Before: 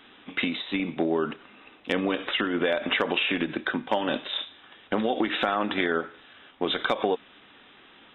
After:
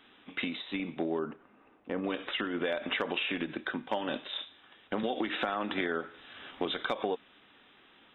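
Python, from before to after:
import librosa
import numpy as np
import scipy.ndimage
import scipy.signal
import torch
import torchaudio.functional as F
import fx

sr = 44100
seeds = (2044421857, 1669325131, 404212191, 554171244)

y = fx.lowpass(x, sr, hz=1300.0, slope=12, at=(1.19, 2.04))
y = fx.band_squash(y, sr, depth_pct=70, at=(5.03, 6.66))
y = F.gain(torch.from_numpy(y), -7.0).numpy()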